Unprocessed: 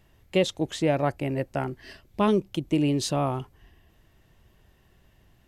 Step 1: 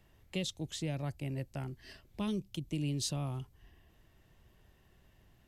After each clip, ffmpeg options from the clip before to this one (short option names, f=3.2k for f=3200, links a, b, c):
-filter_complex "[0:a]acrossover=split=190|3000[a][b][c];[b]acompressor=threshold=-49dB:ratio=2[d];[a][d][c]amix=inputs=3:normalize=0,volume=-4.5dB"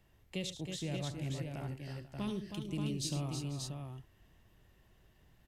-af "aecho=1:1:73|107|319|335|491|582:0.266|0.188|0.422|0.126|0.133|0.562,volume=-3dB"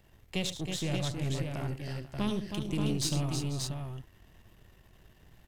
-af "aeval=exprs='if(lt(val(0),0),0.447*val(0),val(0))':c=same,volume=9dB"